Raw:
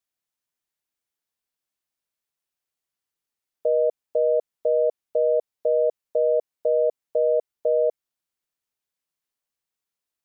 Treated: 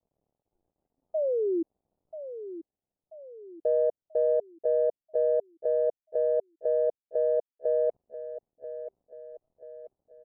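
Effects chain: median filter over 41 samples; Chebyshev low-pass 750 Hz, order 3; spectral noise reduction 16 dB; reverse; upward compressor, threshold -47 dBFS; reverse; painted sound fall, 1.14–1.63, 320–650 Hz -25 dBFS; on a send: feedback echo 0.986 s, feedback 45%, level -12 dB; on the sum: gain -1.5 dB

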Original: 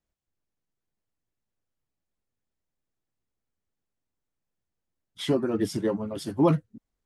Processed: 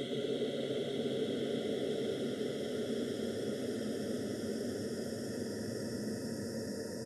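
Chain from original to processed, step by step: per-bin expansion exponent 3; flange 0.69 Hz, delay 7 ms, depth 3 ms, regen +78%; Paulstretch 17×, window 1.00 s, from 5.32; on a send: frequency-shifting echo 0.119 s, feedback 51%, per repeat +44 Hz, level -7 dB

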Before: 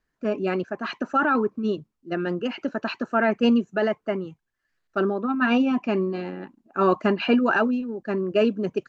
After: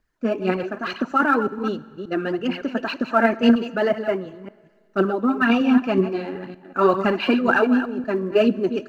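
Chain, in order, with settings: reverse delay 0.187 s, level -10.5 dB; phaser 2 Hz, delay 4.4 ms, feedback 51%; plate-style reverb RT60 1.8 s, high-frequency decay 0.95×, DRR 18 dB; gain +1.5 dB

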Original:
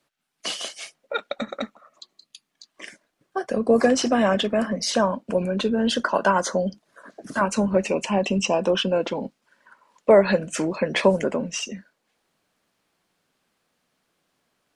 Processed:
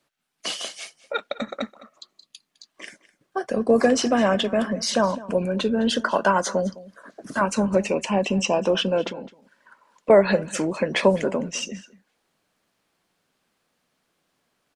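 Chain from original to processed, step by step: 9.09–10.1 compressor, threshold -33 dBFS, peak gain reduction 15 dB; on a send: echo 0.209 s -19 dB

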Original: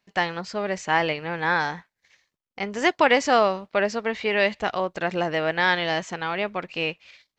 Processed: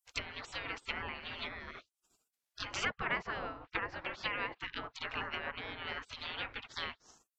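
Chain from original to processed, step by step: treble ducked by the level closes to 660 Hz, closed at -19.5 dBFS; spectral gate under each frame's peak -25 dB weak; gain +8.5 dB

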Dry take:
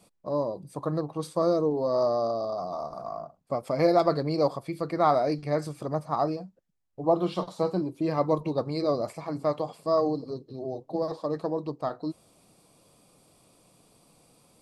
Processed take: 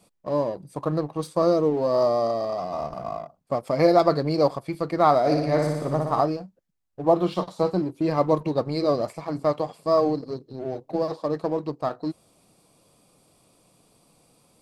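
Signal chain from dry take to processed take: 2.74–3.18 low shelf 250 Hz +9 dB; in parallel at -4 dB: crossover distortion -41 dBFS; 5.19–6.21 on the sum: flutter echo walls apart 10.1 m, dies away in 1 s

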